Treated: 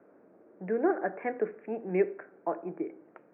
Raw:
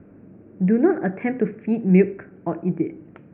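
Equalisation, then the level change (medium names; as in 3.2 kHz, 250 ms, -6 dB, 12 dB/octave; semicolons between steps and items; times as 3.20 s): high-pass 170 Hz 12 dB/octave; three-band isolator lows -22 dB, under 440 Hz, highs -19 dB, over 2.3 kHz; treble shelf 2.3 kHz -10.5 dB; 0.0 dB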